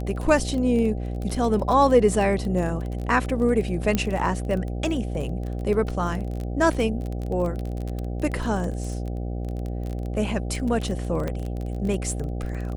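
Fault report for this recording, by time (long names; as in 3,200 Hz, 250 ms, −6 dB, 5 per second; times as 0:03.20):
mains buzz 60 Hz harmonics 13 −29 dBFS
surface crackle 25 per second −28 dBFS
0:03.95: click −9 dBFS
0:11.28: click −16 dBFS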